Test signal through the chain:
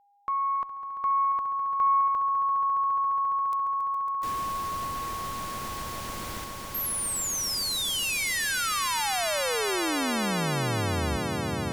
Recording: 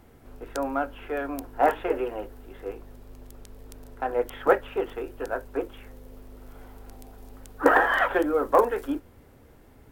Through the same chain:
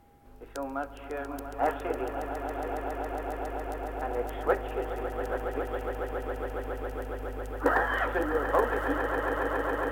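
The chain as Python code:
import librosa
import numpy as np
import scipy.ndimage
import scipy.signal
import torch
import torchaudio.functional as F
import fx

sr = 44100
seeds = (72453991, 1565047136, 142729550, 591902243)

y = fx.cheby_harmonics(x, sr, harmonics=(6,), levels_db=(-35,), full_scale_db=-4.0)
y = y + 10.0 ** (-55.0 / 20.0) * np.sin(2.0 * np.pi * 810.0 * np.arange(len(y)) / sr)
y = fx.echo_swell(y, sr, ms=138, loudest=8, wet_db=-10.5)
y = y * 10.0 ** (-6.5 / 20.0)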